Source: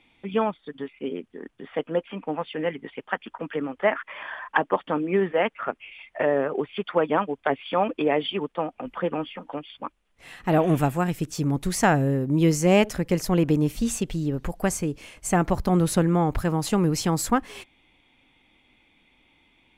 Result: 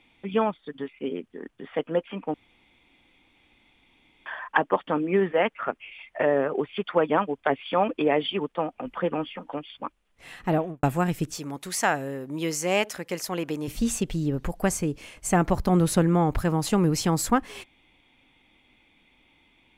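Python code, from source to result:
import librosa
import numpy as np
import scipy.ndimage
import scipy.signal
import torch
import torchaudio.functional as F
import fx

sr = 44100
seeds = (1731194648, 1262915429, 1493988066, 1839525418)

y = fx.studio_fade_out(x, sr, start_s=10.39, length_s=0.44)
y = fx.highpass(y, sr, hz=810.0, slope=6, at=(11.38, 13.68))
y = fx.edit(y, sr, fx.room_tone_fill(start_s=2.34, length_s=1.92), tone=tone)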